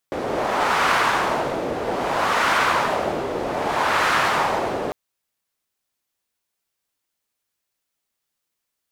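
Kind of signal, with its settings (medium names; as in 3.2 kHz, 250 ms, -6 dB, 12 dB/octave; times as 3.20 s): wind-like swept noise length 4.80 s, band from 490 Hz, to 1.3 kHz, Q 1.5, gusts 3, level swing 7 dB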